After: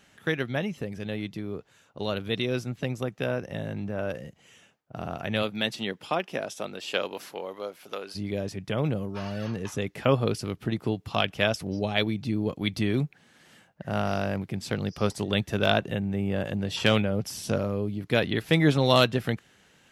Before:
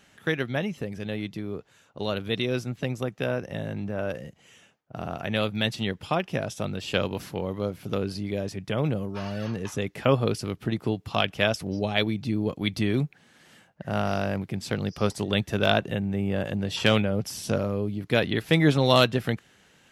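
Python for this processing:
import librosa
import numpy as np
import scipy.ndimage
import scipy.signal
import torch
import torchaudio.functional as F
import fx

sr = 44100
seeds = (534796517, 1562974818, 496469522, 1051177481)

y = fx.highpass(x, sr, hz=fx.line((5.42, 170.0), (8.14, 680.0)), slope=12, at=(5.42, 8.14), fade=0.02)
y = y * 10.0 ** (-1.0 / 20.0)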